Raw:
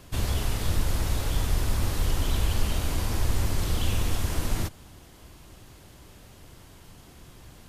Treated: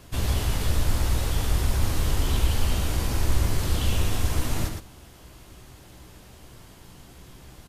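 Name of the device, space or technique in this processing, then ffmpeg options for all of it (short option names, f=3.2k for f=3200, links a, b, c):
slapback doubling: -filter_complex "[0:a]asplit=3[a][b][c];[b]adelay=16,volume=-6dB[d];[c]adelay=116,volume=-5dB[e];[a][d][e]amix=inputs=3:normalize=0"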